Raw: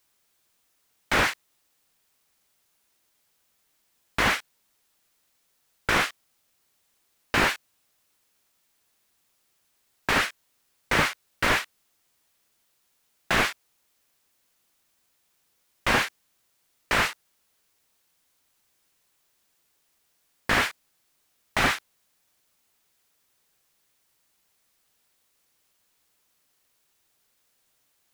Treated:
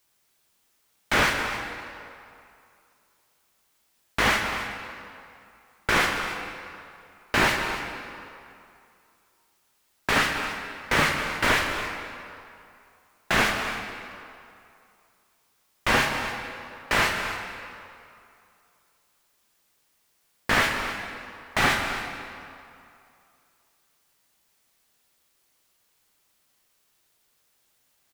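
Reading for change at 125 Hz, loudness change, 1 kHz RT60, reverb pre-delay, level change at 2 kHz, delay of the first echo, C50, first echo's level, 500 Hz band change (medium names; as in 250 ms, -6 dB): +2.0 dB, 0.0 dB, 2.7 s, 3 ms, +2.0 dB, 270 ms, 3.5 dB, -13.5 dB, +2.0 dB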